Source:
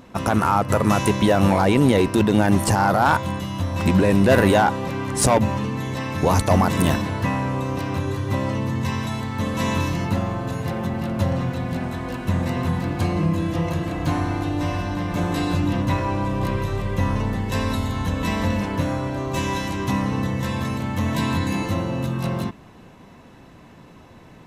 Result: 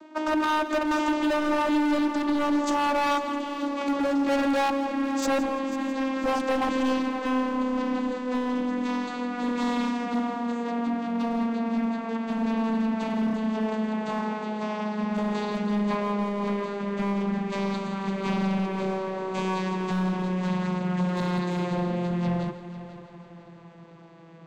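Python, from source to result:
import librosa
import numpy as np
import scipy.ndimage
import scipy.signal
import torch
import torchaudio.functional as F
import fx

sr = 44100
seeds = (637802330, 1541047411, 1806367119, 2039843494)

y = fx.vocoder_glide(x, sr, note=63, semitones=-11)
y = fx.highpass(y, sr, hz=460.0, slope=6)
y = np.clip(y, -10.0 ** (-27.0 / 20.0), 10.0 ** (-27.0 / 20.0))
y = fx.echo_heads(y, sr, ms=165, heads='first and third', feedback_pct=53, wet_db=-15.0)
y = y * librosa.db_to_amplitude(4.5)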